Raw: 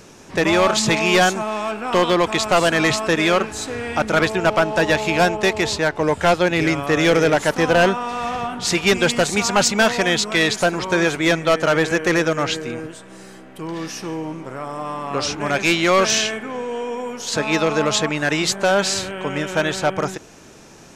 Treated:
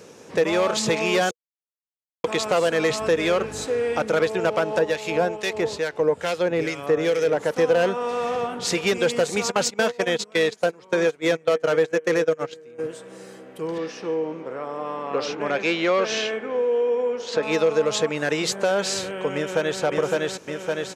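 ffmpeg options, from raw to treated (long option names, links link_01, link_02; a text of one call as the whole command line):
ffmpeg -i in.wav -filter_complex "[0:a]asettb=1/sr,asplit=3[link_01][link_02][link_03];[link_01]atrim=end=3.004[link_04];[link_02]atrim=start=3:end=3.66,asetpts=PTS-STARTPTS,afade=type=in:duration=0.004:curve=qsin,afade=type=out:start_time=0.656:duration=0.004:curve=qsin,aeval=exprs='val(0)+0.0398*(sin(2*PI*50*n/s)+sin(2*PI*2*50*n/s)/2+sin(2*PI*3*50*n/s)/3+sin(2*PI*4*50*n/s)/4+sin(2*PI*5*50*n/s)/5)':channel_layout=same[link_05];[link_03]atrim=start=3.656[link_06];[link_04][link_05]acrossfade=duration=0.004:curve1=hsin:curve2=qsin[link_07];[link_07][link_06]acrossfade=duration=0.004:curve1=qsin:curve2=hsin,asettb=1/sr,asplit=3[link_08][link_09][link_10];[link_08]atrim=end=4.794[link_11];[link_09]atrim=start=4.79:end=7.57,asetpts=PTS-STARTPTS,afade=type=in:duration=0.004:curve=qsin,afade=type=out:start_time=2.776:duration=0.004:curve=qsin,acrossover=split=1700[link_12][link_13];[link_12]aeval=exprs='val(0)*(1-0.7/2+0.7/2*cos(2*PI*2.3*n/s))':channel_layout=same[link_14];[link_13]aeval=exprs='val(0)*(1-0.7/2-0.7/2*cos(2*PI*2.3*n/s))':channel_layout=same[link_15];[link_14][link_15]amix=inputs=2:normalize=0[link_16];[link_10]atrim=start=7.566[link_17];[link_11][link_16]acrossfade=duration=0.004:curve1=hsin:curve2=qsin[link_18];[link_18][link_17]acrossfade=duration=0.004:curve1=qsin:curve2=hsin,asplit=3[link_19][link_20][link_21];[link_19]afade=type=out:start_time=9.5:duration=0.02[link_22];[link_20]agate=range=-21dB:threshold=-20dB:ratio=16:release=100:detection=peak,afade=type=in:start_time=9.5:duration=0.02,afade=type=out:start_time=12.78:duration=0.02[link_23];[link_21]afade=type=in:start_time=12.78:duration=0.02[link_24];[link_22][link_23][link_24]amix=inputs=3:normalize=0,asettb=1/sr,asplit=3[link_25][link_26][link_27];[link_25]atrim=end=13.784[link_28];[link_26]atrim=start=13.78:end=17.43,asetpts=PTS-STARTPTS,afade=type=in:duration=0.004:curve=qsin,afade=type=out:start_time=3.646:duration=0.004:curve=qsin,highpass=180,lowpass=4100[link_29];[link_27]atrim=start=17.426[link_30];[link_28][link_29]acrossfade=duration=0.004:curve1=hsin:curve2=qsin[link_31];[link_31][link_30]acrossfade=duration=0.004:curve1=qsin:curve2=hsin,asplit=2[link_32][link_33];[link_33]afade=type=in:start_time=19.35:duration=0.01,afade=type=out:start_time=19.81:duration=0.01,aecho=0:1:560|1120|1680|2240|2800|3360|3920|4480|5040:0.891251|0.534751|0.32085|0.19251|0.115506|0.0693037|0.0415822|0.0249493|0.0149696[link_34];[link_32][link_34]amix=inputs=2:normalize=0,asplit=3[link_35][link_36][link_37];[link_35]atrim=end=1.31,asetpts=PTS-STARTPTS,afade=type=out:start_time=1.306:duration=0.004:curve=hsin[link_38];[link_36]atrim=start=1.31:end=2.24,asetpts=PTS-STARTPTS,volume=0[link_39];[link_37]atrim=start=2.24,asetpts=PTS-STARTPTS,afade=type=in:duration=0.004:curve=hsin[link_40];[link_38][link_39][link_40]concat=n=3:v=0:a=1,highpass=110,equalizer=frequency=480:width=4.4:gain=12.5,acompressor=threshold=-16dB:ratio=2,volume=-4dB" out.wav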